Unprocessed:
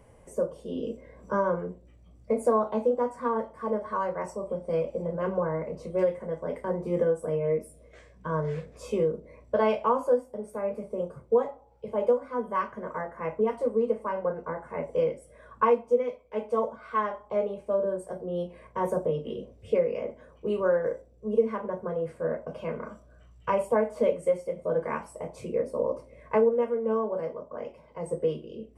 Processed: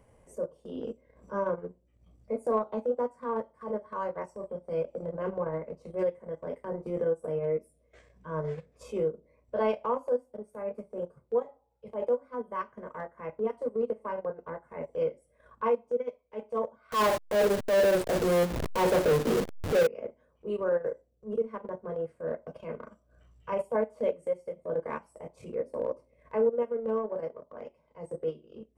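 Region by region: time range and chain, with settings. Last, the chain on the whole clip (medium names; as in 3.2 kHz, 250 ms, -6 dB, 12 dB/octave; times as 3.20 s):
16.92–19.87 s: send-on-delta sampling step -41 dBFS + power-law waveshaper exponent 0.35
whole clip: dynamic bell 440 Hz, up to +3 dB, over -33 dBFS, Q 0.81; transient shaper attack -7 dB, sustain -11 dB; trim -4 dB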